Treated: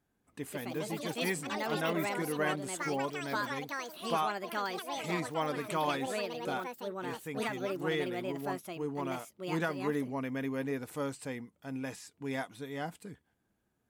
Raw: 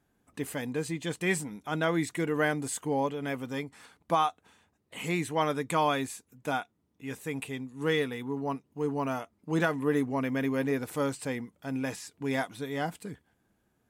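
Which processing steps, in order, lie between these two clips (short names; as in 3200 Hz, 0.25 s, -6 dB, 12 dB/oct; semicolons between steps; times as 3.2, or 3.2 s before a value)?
echoes that change speed 0.245 s, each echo +5 st, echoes 3; gain -6 dB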